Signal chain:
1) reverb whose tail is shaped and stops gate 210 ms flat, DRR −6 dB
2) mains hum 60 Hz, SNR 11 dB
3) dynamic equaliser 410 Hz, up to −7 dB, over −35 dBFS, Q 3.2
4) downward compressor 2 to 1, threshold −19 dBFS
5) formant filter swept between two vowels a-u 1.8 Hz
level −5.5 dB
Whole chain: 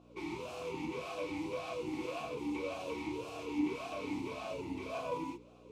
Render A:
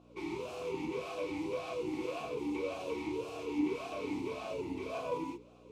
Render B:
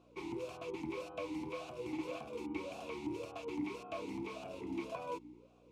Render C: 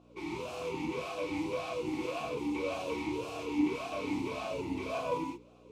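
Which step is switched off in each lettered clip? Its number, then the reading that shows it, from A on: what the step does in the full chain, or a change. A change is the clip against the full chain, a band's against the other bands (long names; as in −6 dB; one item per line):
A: 3, change in integrated loudness +1.5 LU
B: 1, change in momentary loudness spread −2 LU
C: 4, average gain reduction 3.5 dB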